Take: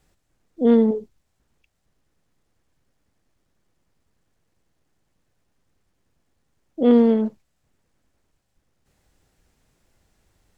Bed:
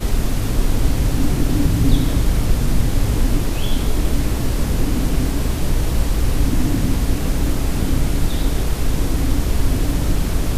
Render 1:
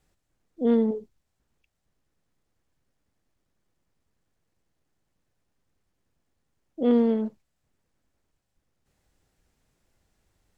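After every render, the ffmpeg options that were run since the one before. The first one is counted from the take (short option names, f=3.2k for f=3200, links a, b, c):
-af "volume=-6dB"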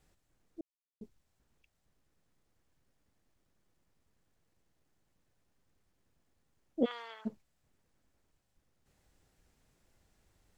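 -filter_complex "[0:a]asplit=3[a][b][c];[a]afade=t=out:st=6.84:d=0.02[d];[b]highpass=f=1.1k:w=0.5412,highpass=f=1.1k:w=1.3066,afade=t=in:st=6.84:d=0.02,afade=t=out:st=7.25:d=0.02[e];[c]afade=t=in:st=7.25:d=0.02[f];[d][e][f]amix=inputs=3:normalize=0,asplit=3[g][h][i];[g]atrim=end=0.61,asetpts=PTS-STARTPTS,afade=t=out:st=0.606:d=0.004:c=hsin[j];[h]atrim=start=0.61:end=1.01,asetpts=PTS-STARTPTS,volume=0[k];[i]atrim=start=1.01,asetpts=PTS-STARTPTS,afade=t=in:d=0.004:c=hsin[l];[j][k][l]concat=n=3:v=0:a=1"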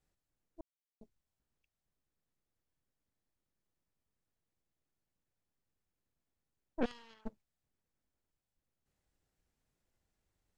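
-af "asoftclip=type=tanh:threshold=-24.5dB,aeval=exprs='0.0596*(cos(1*acos(clip(val(0)/0.0596,-1,1)))-cos(1*PI/2))+0.015*(cos(3*acos(clip(val(0)/0.0596,-1,1)))-cos(3*PI/2))+0.0133*(cos(4*acos(clip(val(0)/0.0596,-1,1)))-cos(4*PI/2))':c=same"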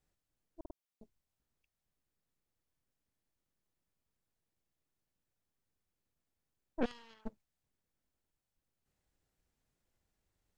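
-filter_complex "[0:a]asplit=4[a][b][c][d];[a]atrim=end=0.652[e];[b]atrim=start=0.598:end=0.652[f];[c]atrim=start=0.598:end=0.652[g];[d]atrim=start=0.748[h];[e][f]acrossfade=d=0.004:c1=hsin:c2=hsin[i];[i][g]acrossfade=d=0.004:c1=hsin:c2=hsin[j];[j][h]acrossfade=d=0.004:c1=hsin:c2=hsin"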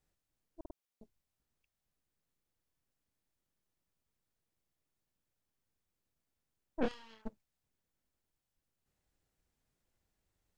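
-filter_complex "[0:a]asettb=1/sr,asplit=3[a][b][c];[a]atrim=end=6.814[d];[b]atrim=start=6.81:end=7.22,asetpts=PTS-STARTPTS,afade=t=in:d=0.004:c=qsin,afade=t=out:st=0.406:d=0.004:c=qsin,asplit=2[e][f];[f]adelay=27,volume=-4.5dB[g];[e][g]amix=inputs=2:normalize=0,atrim=end_sample=18081[h];[c]atrim=start=7.216[i];[d][h]acrossfade=d=0.004:c1=hsin:c2=qsin[j];[j][i]acrossfade=d=0.004:c1=qsin:c2=hsin"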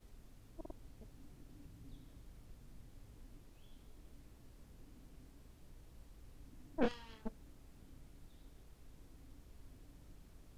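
-filter_complex "[1:a]volume=-40.5dB[a];[0:a][a]amix=inputs=2:normalize=0"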